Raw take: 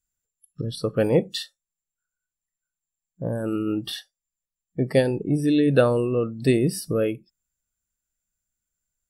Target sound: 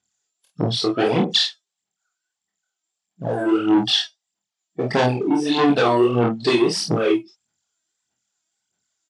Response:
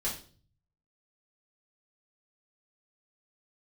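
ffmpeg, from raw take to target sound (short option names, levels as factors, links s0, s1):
-af "equalizer=f=5100:w=1.5:g=5.5,aphaser=in_gain=1:out_gain=1:delay=3.2:decay=0.78:speed=1.6:type=sinusoidal,asoftclip=type=tanh:threshold=0.178,highpass=f=130:w=0.5412,highpass=f=130:w=1.3066,equalizer=f=150:t=q:w=4:g=-9,equalizer=f=530:t=q:w=4:g=-6,equalizer=f=760:t=q:w=4:g=7,equalizer=f=3300:t=q:w=4:g=5,lowpass=f=7100:w=0.5412,lowpass=f=7100:w=1.3066,aecho=1:1:25|49:0.708|0.473,alimiter=level_in=2.82:limit=0.891:release=50:level=0:latency=1,volume=0.501"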